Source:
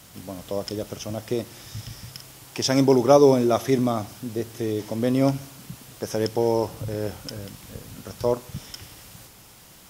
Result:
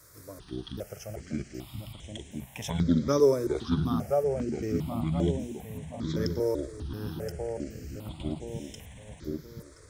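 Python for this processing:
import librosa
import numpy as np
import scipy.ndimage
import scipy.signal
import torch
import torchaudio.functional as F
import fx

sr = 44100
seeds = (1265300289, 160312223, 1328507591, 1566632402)

y = fx.pitch_trill(x, sr, semitones=-8.0, every_ms=385)
y = fx.echo_filtered(y, sr, ms=1024, feedback_pct=45, hz=1500.0, wet_db=-5.0)
y = fx.phaser_held(y, sr, hz=2.5, low_hz=790.0, high_hz=4600.0)
y = y * 10.0 ** (-4.5 / 20.0)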